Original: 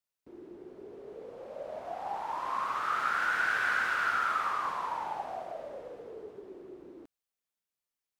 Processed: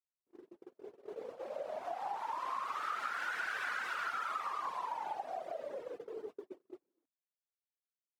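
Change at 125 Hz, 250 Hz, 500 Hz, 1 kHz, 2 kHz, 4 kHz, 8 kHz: no reading, -6.5 dB, -2.0 dB, -6.0 dB, -9.5 dB, -5.5 dB, -5.5 dB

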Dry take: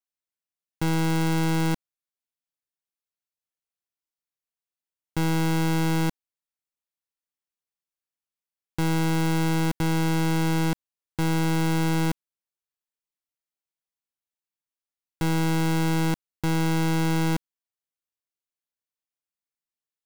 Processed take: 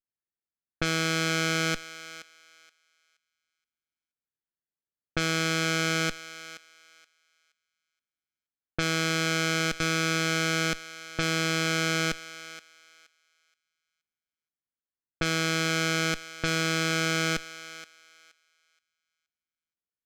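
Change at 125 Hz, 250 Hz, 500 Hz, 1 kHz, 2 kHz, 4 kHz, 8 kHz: -8.5 dB, -7.0 dB, -0.5 dB, -2.5 dB, +6.0 dB, +7.0 dB, +5.0 dB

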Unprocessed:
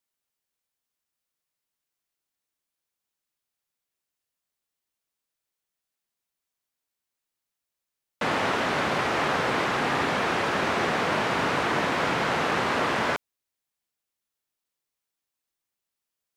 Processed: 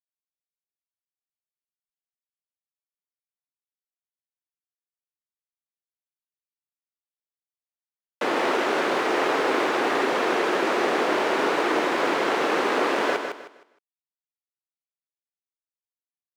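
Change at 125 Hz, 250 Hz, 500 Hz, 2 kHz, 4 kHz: -12.5 dB, +3.0 dB, +5.0 dB, +0.5 dB, 0.0 dB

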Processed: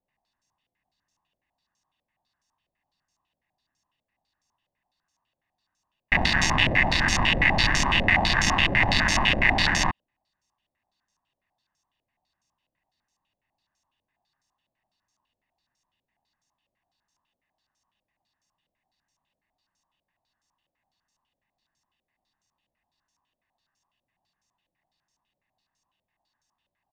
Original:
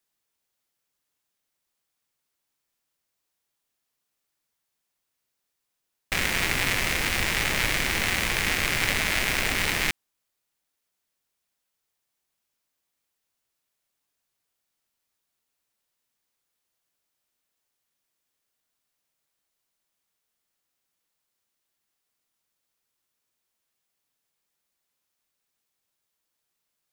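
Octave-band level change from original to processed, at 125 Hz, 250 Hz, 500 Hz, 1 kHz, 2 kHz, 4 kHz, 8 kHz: +6.0 dB, +6.0 dB, +3.0 dB, +7.0 dB, +3.5 dB, +3.0 dB, -1.5 dB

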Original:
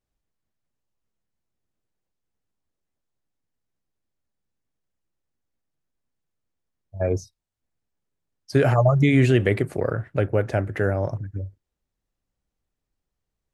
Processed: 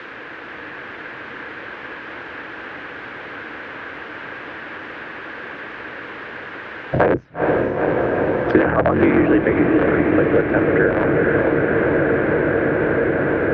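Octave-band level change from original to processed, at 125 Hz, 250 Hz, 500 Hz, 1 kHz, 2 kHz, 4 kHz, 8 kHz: -2.0 dB, +9.5 dB, +9.0 dB, +10.5 dB, +12.5 dB, +3.5 dB, no reading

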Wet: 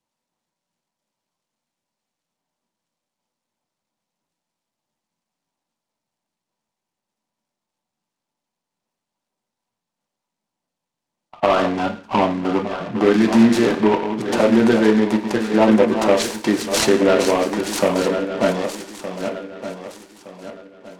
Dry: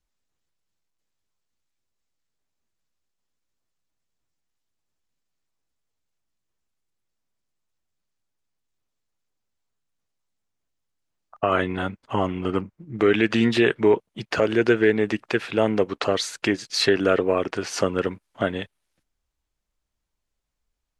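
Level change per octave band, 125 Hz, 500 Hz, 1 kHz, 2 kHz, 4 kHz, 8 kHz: +2.5 dB, +4.5 dB, +7.0 dB, +1.0 dB, +2.0 dB, +8.0 dB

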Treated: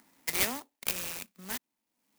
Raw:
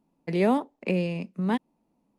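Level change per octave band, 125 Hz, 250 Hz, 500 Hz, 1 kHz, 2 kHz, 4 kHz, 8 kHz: -20.0 dB, -19.0 dB, -16.5 dB, -11.0 dB, 0.0 dB, +7.0 dB, no reading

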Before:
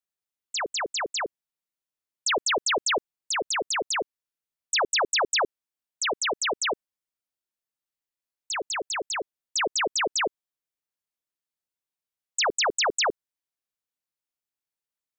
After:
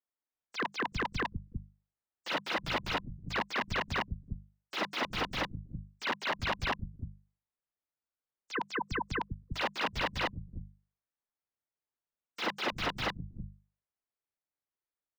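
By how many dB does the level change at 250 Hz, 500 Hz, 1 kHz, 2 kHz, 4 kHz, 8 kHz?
+1.0 dB, -10.0 dB, -6.5 dB, -6.5 dB, -10.5 dB, -24.0 dB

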